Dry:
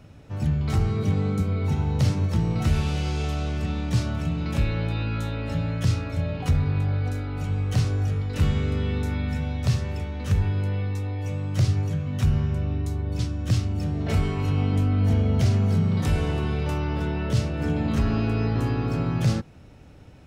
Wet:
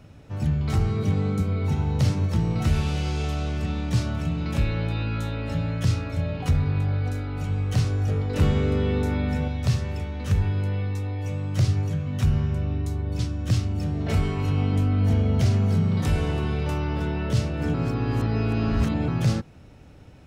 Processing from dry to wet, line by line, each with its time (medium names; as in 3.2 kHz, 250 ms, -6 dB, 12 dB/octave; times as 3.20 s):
8.08–9.48 s: peaking EQ 480 Hz +7 dB 2.3 oct
17.74–19.08 s: reverse